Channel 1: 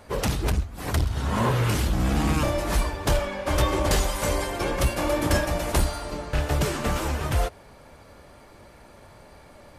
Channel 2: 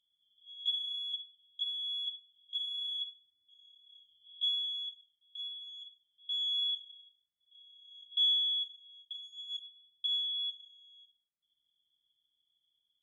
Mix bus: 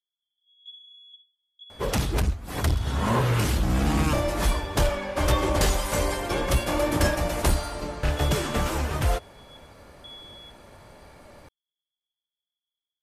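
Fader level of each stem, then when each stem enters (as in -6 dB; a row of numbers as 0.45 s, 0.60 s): 0.0 dB, -12.0 dB; 1.70 s, 0.00 s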